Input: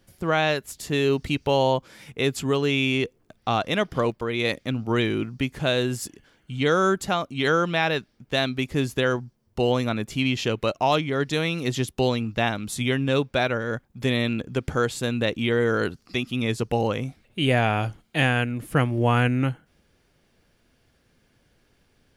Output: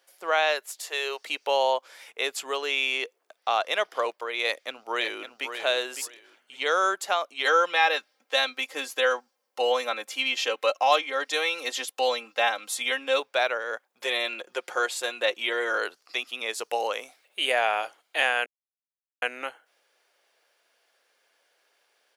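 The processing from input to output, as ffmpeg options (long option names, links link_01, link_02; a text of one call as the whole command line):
ffmpeg -i in.wav -filter_complex "[0:a]asettb=1/sr,asplit=3[link_01][link_02][link_03];[link_01]atrim=end=0.804[link_04];[link_02]atrim=start=0.8:end=1.25,asetpts=PTS-STARTPTS,afade=type=in:duration=0.004:curve=qsin,afade=type=out:start_time=0.446:duration=0.004:curve=qsin,highpass=frequency=410:width=0.5412,highpass=frequency=410:width=1.3066[link_05];[link_03]atrim=start=1.246[link_06];[link_04][link_05]acrossfade=duration=0.004:curve1=hsin:curve2=qsin[link_07];[link_07][link_06]acrossfade=duration=0.004:curve1=qsin:curve2=hsin,asplit=2[link_08][link_09];[link_09]afade=type=in:start_time=4.44:duration=0.01,afade=type=out:start_time=5.45:duration=0.01,aecho=0:1:560|1120|1680:0.375837|0.0751675|0.0150335[link_10];[link_08][link_10]amix=inputs=2:normalize=0,asettb=1/sr,asplit=3[link_11][link_12][link_13];[link_11]atrim=end=7.454[link_14];[link_12]atrim=start=7.45:end=13.2,asetpts=PTS-STARTPTS,afade=type=in:duration=0.004:curve=qsin,afade=type=out:start_time=5.746:duration=0.004:curve=qsin,aecho=1:1:3.8:0.76,atrim=end_sample=253575[link_15];[link_13]atrim=start=13.196[link_16];[link_14][link_15]acrossfade=duration=0.004:curve1=hsin:curve2=qsin[link_17];[link_17][link_16]acrossfade=duration=0.004:curve1=qsin:curve2=hsin,asettb=1/sr,asplit=3[link_18][link_19][link_20];[link_18]atrim=end=14.004[link_21];[link_19]atrim=start=14:end=15.78,asetpts=PTS-STARTPTS,afade=type=in:duration=0.004:curve=qsin,afade=type=out:start_time=1.776:duration=0.004:curve=qsin,aecho=1:1:5.6:0.65,atrim=end_sample=78498[link_22];[link_20]atrim=start=15.776[link_23];[link_21][link_22]acrossfade=duration=0.004:curve1=hsin:curve2=qsin[link_24];[link_24][link_23]acrossfade=duration=0.004:curve1=qsin:curve2=hsin,asettb=1/sr,asplit=3[link_25][link_26][link_27];[link_25]atrim=end=16.534[link_28];[link_26]atrim=start=16.53:end=17.52,asetpts=PTS-STARTPTS,afade=type=in:duration=0.004:curve=qsin,afade=type=out:start_time=0.986:duration=0.004:curve=qsin,highshelf=frequency=5000:gain=6.5[link_29];[link_27]atrim=start=17.516[link_30];[link_28][link_29]acrossfade=duration=0.004:curve1=hsin:curve2=qsin[link_31];[link_31][link_30]acrossfade=duration=0.004:curve1=qsin:curve2=hsin,asplit=3[link_32][link_33][link_34];[link_32]atrim=end=18.46,asetpts=PTS-STARTPTS,afade=type=out:start_time=18.456:duration=0.004:curve=hsin[link_35];[link_33]atrim=start=18.46:end=19.22,asetpts=PTS-STARTPTS,volume=0[link_36];[link_34]atrim=start=19.22,asetpts=PTS-STARTPTS,afade=type=in:duration=0.004:curve=hsin[link_37];[link_35][link_36][link_37]concat=n=3:v=0:a=1,highpass=frequency=530:width=0.5412,highpass=frequency=530:width=1.3066" out.wav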